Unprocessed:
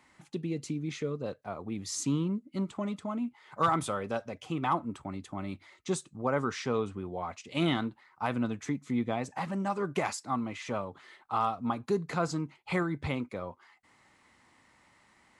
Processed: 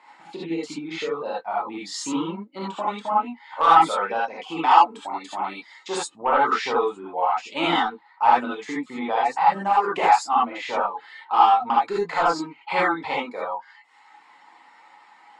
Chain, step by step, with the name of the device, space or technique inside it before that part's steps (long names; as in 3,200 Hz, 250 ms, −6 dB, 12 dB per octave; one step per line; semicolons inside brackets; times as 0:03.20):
intercom (band-pass filter 450–4,800 Hz; parametric band 880 Hz +10 dB 0.4 octaves; soft clipping −18.5 dBFS, distortion −16 dB)
0:04.57–0:05.99: bass and treble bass −7 dB, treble +6 dB
reverb reduction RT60 1.1 s
notch filter 6,000 Hz, Q 7.2
reverb whose tail is shaped and stops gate 100 ms rising, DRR −6 dB
level +5.5 dB